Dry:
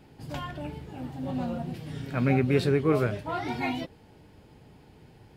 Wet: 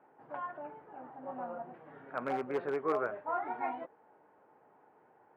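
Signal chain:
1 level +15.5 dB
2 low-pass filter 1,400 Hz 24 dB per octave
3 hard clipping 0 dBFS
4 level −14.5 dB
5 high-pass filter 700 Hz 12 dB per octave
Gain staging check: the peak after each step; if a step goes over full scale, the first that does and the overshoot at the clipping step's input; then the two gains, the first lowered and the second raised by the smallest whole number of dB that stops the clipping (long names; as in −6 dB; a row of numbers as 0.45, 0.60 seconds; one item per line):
+4.5, +3.5, 0.0, −14.5, −20.5 dBFS
step 1, 3.5 dB
step 1 +11.5 dB, step 4 −10.5 dB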